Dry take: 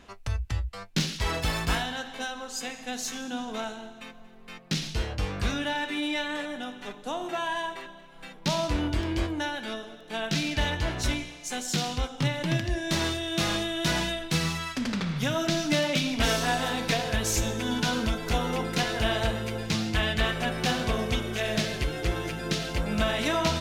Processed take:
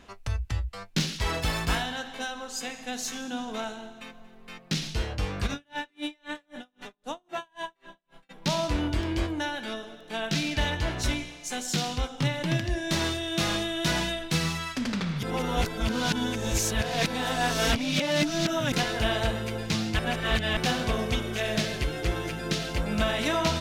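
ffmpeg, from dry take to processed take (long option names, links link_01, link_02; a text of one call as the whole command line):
ffmpeg -i in.wav -filter_complex "[0:a]asplit=3[link_01][link_02][link_03];[link_01]afade=type=out:start_time=5.46:duration=0.02[link_04];[link_02]aeval=exprs='val(0)*pow(10,-40*(0.5-0.5*cos(2*PI*3.8*n/s))/20)':channel_layout=same,afade=type=in:start_time=5.46:duration=0.02,afade=type=out:start_time=8.29:duration=0.02[link_05];[link_03]afade=type=in:start_time=8.29:duration=0.02[link_06];[link_04][link_05][link_06]amix=inputs=3:normalize=0,asplit=5[link_07][link_08][link_09][link_10][link_11];[link_07]atrim=end=15.232[link_12];[link_08]atrim=start=15.228:end=18.722,asetpts=PTS-STARTPTS,areverse[link_13];[link_09]atrim=start=18.718:end=19.992[link_14];[link_10]atrim=start=19.988:end=20.572,asetpts=PTS-STARTPTS,areverse[link_15];[link_11]atrim=start=20.568[link_16];[link_12][link_13]acrossfade=duration=0.004:curve1=hsin:curve2=hsin[link_17];[link_17][link_14]acrossfade=duration=0.004:curve1=hsin:curve2=hsin[link_18];[link_18][link_15]acrossfade=duration=0.004:curve1=hsin:curve2=hsin[link_19];[link_19][link_16]acrossfade=duration=0.004:curve1=hsin:curve2=hsin" out.wav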